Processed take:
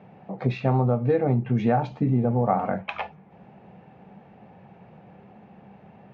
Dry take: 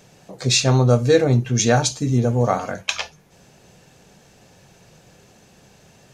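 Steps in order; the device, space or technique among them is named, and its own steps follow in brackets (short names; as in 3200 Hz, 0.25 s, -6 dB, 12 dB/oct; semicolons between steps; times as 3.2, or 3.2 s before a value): bass amplifier (compressor 6:1, threshold -19 dBFS, peak gain reduction 9.5 dB; speaker cabinet 82–2200 Hz, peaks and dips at 200 Hz +9 dB, 800 Hz +8 dB, 1600 Hz -6 dB)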